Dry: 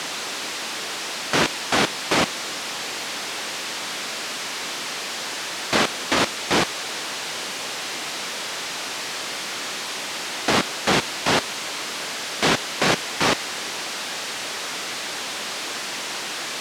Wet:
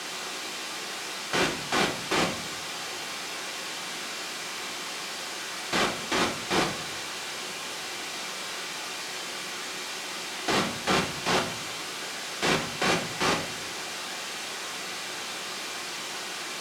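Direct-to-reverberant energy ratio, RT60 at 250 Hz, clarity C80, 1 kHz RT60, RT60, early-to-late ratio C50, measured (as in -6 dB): 0.5 dB, 0.95 s, 12.0 dB, 0.55 s, 0.60 s, 8.5 dB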